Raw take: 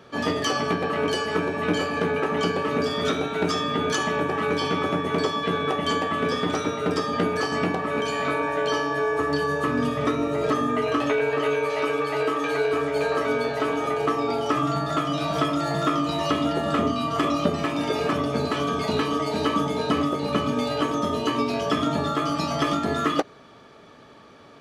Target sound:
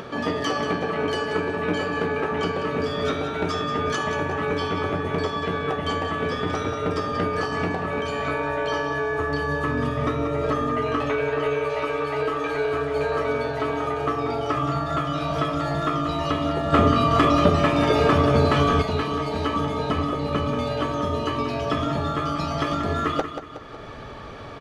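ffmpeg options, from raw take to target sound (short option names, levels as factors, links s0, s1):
-filter_complex "[0:a]highshelf=f=4500:g=-9.5,aecho=1:1:184|368|552|736:0.355|0.117|0.0386|0.0128,acompressor=mode=upward:threshold=0.0501:ratio=2.5,asubboost=boost=6:cutoff=82,asplit=3[s0][s1][s2];[s0]afade=t=out:st=16.72:d=0.02[s3];[s1]acontrast=73,afade=t=in:st=16.72:d=0.02,afade=t=out:st=18.81:d=0.02[s4];[s2]afade=t=in:st=18.81:d=0.02[s5];[s3][s4][s5]amix=inputs=3:normalize=0"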